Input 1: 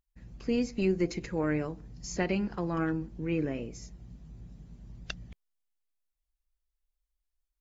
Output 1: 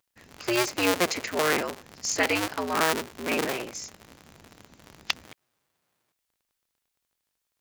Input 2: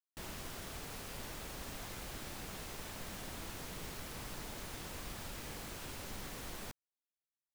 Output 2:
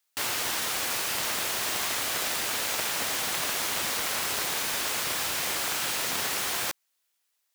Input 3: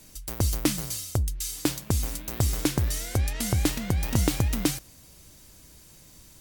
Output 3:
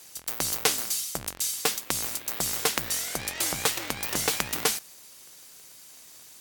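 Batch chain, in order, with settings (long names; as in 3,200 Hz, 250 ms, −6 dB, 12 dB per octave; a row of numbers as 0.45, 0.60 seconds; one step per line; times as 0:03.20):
sub-harmonics by changed cycles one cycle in 2, inverted
high-pass filter 1,200 Hz 6 dB per octave
loudness normalisation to −27 LKFS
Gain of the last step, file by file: +12.5, +19.5, +4.5 decibels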